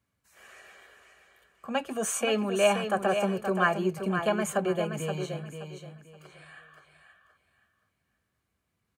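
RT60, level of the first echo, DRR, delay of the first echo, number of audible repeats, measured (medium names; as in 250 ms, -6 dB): no reverb, -7.5 dB, no reverb, 525 ms, 3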